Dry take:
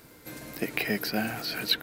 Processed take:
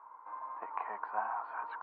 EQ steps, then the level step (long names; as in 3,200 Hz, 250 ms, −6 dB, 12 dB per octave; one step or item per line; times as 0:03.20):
flat-topped band-pass 1,000 Hz, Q 4.3
high-frequency loss of the air 450 metres
+17.0 dB